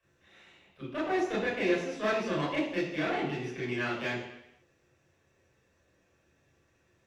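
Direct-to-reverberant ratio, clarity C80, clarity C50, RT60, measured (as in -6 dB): -7.5 dB, 5.5 dB, 2.5 dB, 0.80 s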